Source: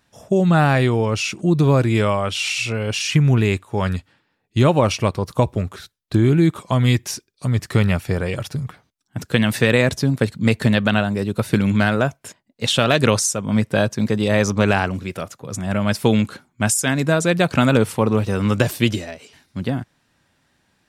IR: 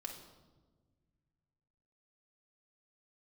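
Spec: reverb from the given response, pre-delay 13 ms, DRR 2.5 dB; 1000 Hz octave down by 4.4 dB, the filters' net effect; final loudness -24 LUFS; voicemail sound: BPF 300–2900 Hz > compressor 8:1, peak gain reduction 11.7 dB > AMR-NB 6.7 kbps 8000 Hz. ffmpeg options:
-filter_complex "[0:a]equalizer=f=1k:t=o:g=-6,asplit=2[a][b];[1:a]atrim=start_sample=2205,adelay=13[c];[b][c]afir=irnorm=-1:irlink=0,volume=0dB[d];[a][d]amix=inputs=2:normalize=0,highpass=300,lowpass=2.9k,acompressor=threshold=-23dB:ratio=8,volume=6dB" -ar 8000 -c:a libopencore_amrnb -b:a 6700

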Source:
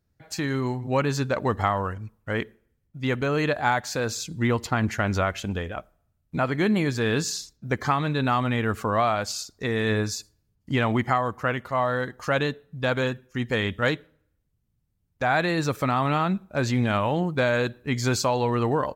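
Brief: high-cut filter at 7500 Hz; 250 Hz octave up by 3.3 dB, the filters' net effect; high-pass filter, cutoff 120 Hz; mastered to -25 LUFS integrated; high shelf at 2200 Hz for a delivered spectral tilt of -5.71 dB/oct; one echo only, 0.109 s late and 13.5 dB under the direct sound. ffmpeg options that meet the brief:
-af "highpass=120,lowpass=7.5k,equalizer=f=250:t=o:g=4.5,highshelf=f=2.2k:g=-5.5,aecho=1:1:109:0.211"

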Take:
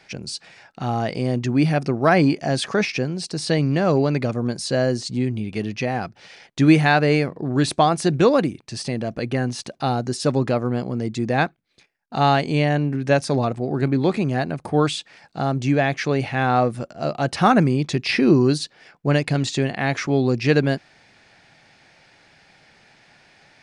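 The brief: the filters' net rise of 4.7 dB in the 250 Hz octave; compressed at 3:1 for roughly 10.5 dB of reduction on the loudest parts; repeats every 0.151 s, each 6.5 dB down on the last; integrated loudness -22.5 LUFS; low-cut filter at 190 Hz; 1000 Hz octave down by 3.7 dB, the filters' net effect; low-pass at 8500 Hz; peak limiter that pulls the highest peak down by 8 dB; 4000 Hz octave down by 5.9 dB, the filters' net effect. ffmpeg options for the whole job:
-af "highpass=190,lowpass=8.5k,equalizer=f=250:t=o:g=7.5,equalizer=f=1k:t=o:g=-6,equalizer=f=4k:t=o:g=-7,acompressor=threshold=-20dB:ratio=3,alimiter=limit=-16.5dB:level=0:latency=1,aecho=1:1:151|302|453|604|755|906:0.473|0.222|0.105|0.0491|0.0231|0.0109,volume=3.5dB"

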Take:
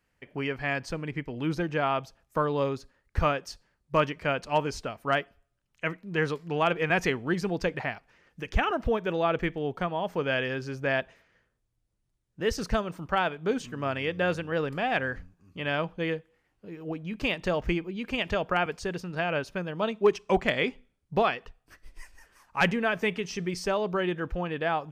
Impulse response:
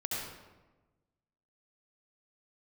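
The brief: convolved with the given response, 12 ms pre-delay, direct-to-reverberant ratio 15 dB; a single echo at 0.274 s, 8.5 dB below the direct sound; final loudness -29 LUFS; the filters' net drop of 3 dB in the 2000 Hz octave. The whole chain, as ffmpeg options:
-filter_complex "[0:a]equalizer=f=2k:t=o:g=-4,aecho=1:1:274:0.376,asplit=2[a][b];[1:a]atrim=start_sample=2205,adelay=12[c];[b][c]afir=irnorm=-1:irlink=0,volume=-19dB[d];[a][d]amix=inputs=2:normalize=0,volume=0.5dB"

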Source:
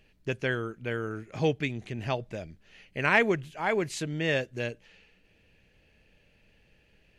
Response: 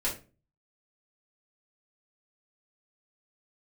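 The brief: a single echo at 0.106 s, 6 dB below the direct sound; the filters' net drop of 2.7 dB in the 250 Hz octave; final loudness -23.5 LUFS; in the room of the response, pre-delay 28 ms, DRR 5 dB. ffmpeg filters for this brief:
-filter_complex "[0:a]equalizer=f=250:t=o:g=-4,aecho=1:1:106:0.501,asplit=2[a][b];[1:a]atrim=start_sample=2205,adelay=28[c];[b][c]afir=irnorm=-1:irlink=0,volume=-11dB[d];[a][d]amix=inputs=2:normalize=0,volume=5dB"

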